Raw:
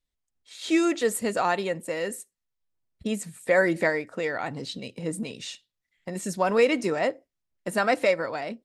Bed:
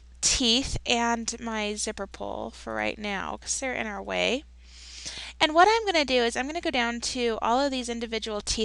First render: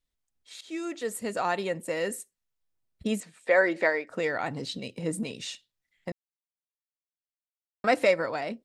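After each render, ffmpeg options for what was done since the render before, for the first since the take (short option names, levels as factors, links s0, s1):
-filter_complex "[0:a]asettb=1/sr,asplit=3[s0][s1][s2];[s0]atrim=end=3.204[s3];[s1]atrim=start=3.2:end=4.1,asetpts=PTS-STARTPTS,afade=t=in:d=0.004:c=qsin,afade=t=out:st=0.896:d=0.004:c=qsin,highpass=380,lowpass=4700[s4];[s2]atrim=start=4.096[s5];[s3][s4]acrossfade=d=0.004:c1=hsin:c2=qsin[s6];[s6][s5]acrossfade=d=0.004:c1=qsin:c2=hsin,asplit=4[s7][s8][s9][s10];[s7]atrim=end=0.61,asetpts=PTS-STARTPTS,afade=t=out:st=0.606:d=0.004:c=hsin:silence=0.125893[s11];[s8]atrim=start=0.61:end=6.12,asetpts=PTS-STARTPTS,afade=t=in:d=1.39:silence=0.125893,afade=t=out:st=5.506:d=0.004:c=hsin[s12];[s9]atrim=start=6.12:end=7.84,asetpts=PTS-STARTPTS,volume=0[s13];[s10]atrim=start=7.84,asetpts=PTS-STARTPTS,afade=t=in:d=0.004:c=hsin[s14];[s11][s12][s13][s14]concat=n=4:v=0:a=1"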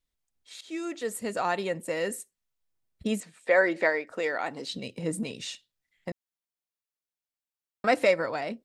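-filter_complex "[0:a]asettb=1/sr,asplit=3[s0][s1][s2];[s0]atrim=end=4.124[s3];[s1]atrim=start=4.12:end=4.72,asetpts=PTS-STARTPTS,afade=t=in:d=0.004:c=qsin,afade=t=out:st=0.596:d=0.004:c=qsin,highpass=300[s4];[s2]atrim=start=4.716[s5];[s3][s4]acrossfade=d=0.004:c1=hsin:c2=qsin[s6];[s6][s5]acrossfade=d=0.004:c1=qsin:c2=hsin"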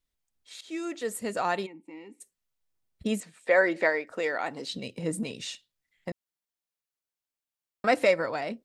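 -filter_complex "[0:a]asplit=3[s0][s1][s2];[s0]afade=t=out:st=1.65:d=0.02[s3];[s1]asplit=3[s4][s5][s6];[s4]bandpass=f=300:t=q:w=8,volume=1[s7];[s5]bandpass=f=870:t=q:w=8,volume=0.501[s8];[s6]bandpass=f=2240:t=q:w=8,volume=0.355[s9];[s7][s8][s9]amix=inputs=3:normalize=0,afade=t=in:st=1.65:d=0.02,afade=t=out:st=2.2:d=0.02[s10];[s2]afade=t=in:st=2.2:d=0.02[s11];[s3][s10][s11]amix=inputs=3:normalize=0"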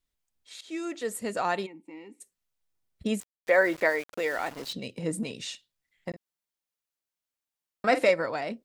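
-filter_complex "[0:a]asettb=1/sr,asplit=3[s0][s1][s2];[s0]atrim=end=3.204[s3];[s1]atrim=start=3.2:end=4.73,asetpts=PTS-STARTPTS,afade=t=in:d=0.004:c=qsin,afade=t=out:st=1.526:d=0.004:c=qsin,aeval=exprs='val(0)*gte(abs(val(0)),0.0106)':c=same[s4];[s2]atrim=start=4.726[s5];[s3][s4]acrossfade=d=0.004:c1=hsin:c2=qsin[s6];[s6][s5]acrossfade=d=0.004:c1=qsin:c2=hsin,asettb=1/sr,asplit=3[s7][s8][s9];[s7]atrim=end=6.094[s10];[s8]atrim=start=6.09:end=8.1,asetpts=PTS-STARTPTS,afade=t=in:d=0.004:c=qsin,afade=t=out:st=2.006:d=0.004:c=qsin,asplit=2[s11][s12];[s12]adelay=46,volume=0.282[s13];[s11][s13]amix=inputs=2:normalize=0,atrim=end_sample=88641[s14];[s9]atrim=start=8.096[s15];[s10][s14]acrossfade=d=0.004:c1=hsin:c2=qsin[s16];[s16][s15]acrossfade=d=0.004:c1=qsin:c2=hsin"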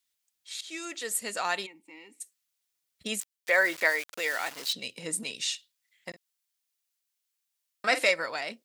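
-af "highpass=f=180:p=1,tiltshelf=f=1300:g=-8.5"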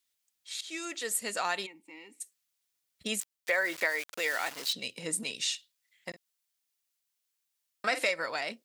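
-af "acompressor=threshold=0.0562:ratio=5"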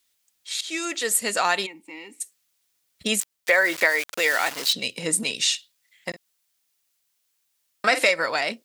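-af "volume=2.99"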